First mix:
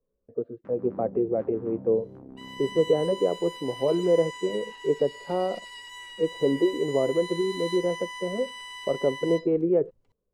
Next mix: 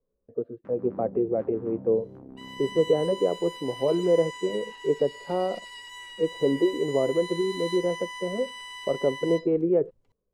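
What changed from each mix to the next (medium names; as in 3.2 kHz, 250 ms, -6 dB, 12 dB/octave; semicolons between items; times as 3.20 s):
no change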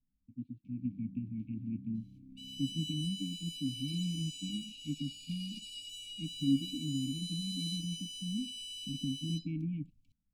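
first sound -7.0 dB; master: add brick-wall FIR band-stop 300–2200 Hz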